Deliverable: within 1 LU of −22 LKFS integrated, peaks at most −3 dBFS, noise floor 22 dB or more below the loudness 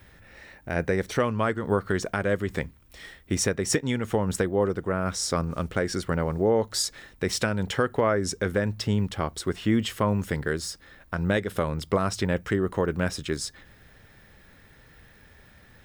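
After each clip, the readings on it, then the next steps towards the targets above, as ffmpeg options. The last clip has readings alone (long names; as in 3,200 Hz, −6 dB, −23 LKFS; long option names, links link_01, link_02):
integrated loudness −27.0 LKFS; sample peak −12.0 dBFS; target loudness −22.0 LKFS
→ -af "volume=5dB"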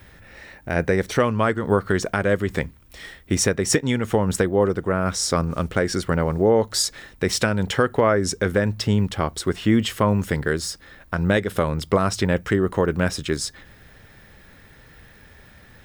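integrated loudness −22.0 LKFS; sample peak −7.0 dBFS; background noise floor −50 dBFS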